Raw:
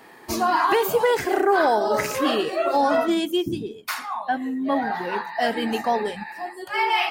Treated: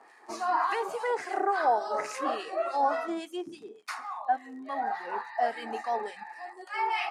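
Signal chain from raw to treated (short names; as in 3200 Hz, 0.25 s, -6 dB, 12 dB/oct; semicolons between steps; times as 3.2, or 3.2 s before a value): harmonic tremolo 3.5 Hz, depth 70%, crossover 1400 Hz; crackle 69/s -40 dBFS; speaker cabinet 370–9900 Hz, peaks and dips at 760 Hz +7 dB, 1200 Hz +6 dB, 1900 Hz +3 dB, 3300 Hz -6 dB; gain -7.5 dB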